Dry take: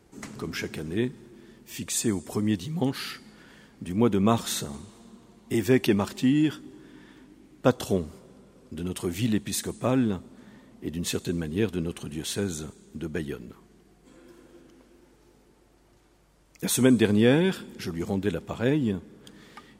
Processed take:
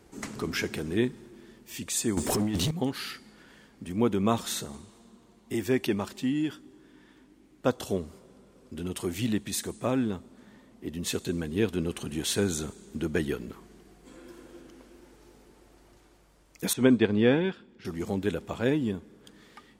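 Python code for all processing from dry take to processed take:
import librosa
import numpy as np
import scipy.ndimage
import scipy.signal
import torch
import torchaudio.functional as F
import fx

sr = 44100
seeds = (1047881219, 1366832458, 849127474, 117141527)

y = fx.chain(x, sr, fx.over_compress(threshold_db=-29.0, ratio=-0.5),
    fx.leveller(passes=3), at=(2.17, 2.71))
y = fx.chain(y, sr, fx.lowpass(hz=3600.0, slope=12),
    fx.upward_expand(threshold_db=-36.0, expansion=1.5), at=(16.73, 17.85))
y = fx.peak_eq(y, sr, hz=140.0, db=-3.5, octaves=1.1)
y = fx.rider(y, sr, range_db=10, speed_s=2.0)
y = F.gain(torch.from_numpy(y), -2.0).numpy()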